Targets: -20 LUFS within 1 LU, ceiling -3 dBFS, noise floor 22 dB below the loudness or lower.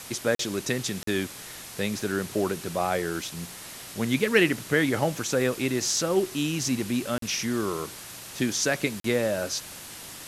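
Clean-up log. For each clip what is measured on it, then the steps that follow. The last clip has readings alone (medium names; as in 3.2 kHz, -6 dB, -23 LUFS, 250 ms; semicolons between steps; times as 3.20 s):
dropouts 4; longest dropout 43 ms; noise floor -42 dBFS; noise floor target -49 dBFS; loudness -27.0 LUFS; peak level -7.0 dBFS; loudness target -20.0 LUFS
-> interpolate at 0.35/1.03/7.18/9.00 s, 43 ms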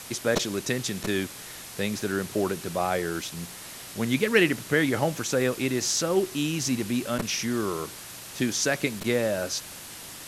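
dropouts 0; noise floor -42 dBFS; noise floor target -49 dBFS
-> noise print and reduce 7 dB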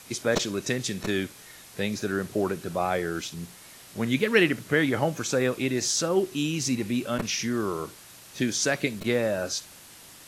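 noise floor -49 dBFS; loudness -27.0 LUFS; peak level -7.0 dBFS; loudness target -20.0 LUFS
-> trim +7 dB; peak limiter -3 dBFS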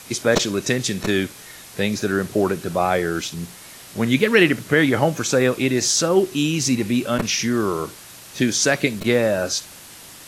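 loudness -20.0 LUFS; peak level -3.0 dBFS; noise floor -42 dBFS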